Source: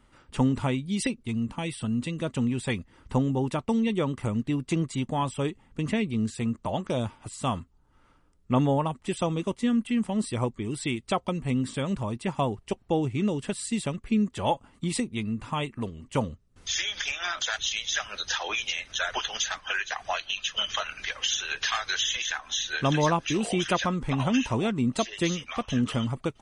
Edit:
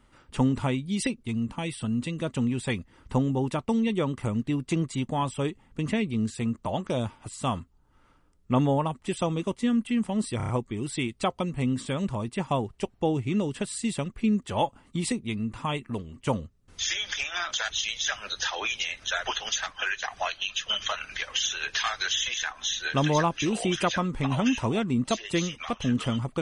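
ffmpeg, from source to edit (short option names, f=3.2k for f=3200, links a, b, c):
-filter_complex "[0:a]asplit=5[a][b][c][d][e];[a]atrim=end=10.402[f];[b]atrim=start=10.368:end=10.402[g];[c]atrim=start=10.368:end=10.402[h];[d]atrim=start=10.368:end=10.402[i];[e]atrim=start=10.368[j];[f][g]acrossfade=d=0.004:c1=hsin:c2=hsin[k];[k][h]acrossfade=d=0.004:c1=hsin:c2=hsin[l];[l][i]acrossfade=d=0.004:c1=hsin:c2=hsin[m];[m][j]acrossfade=d=0.004:c1=hsin:c2=hsin"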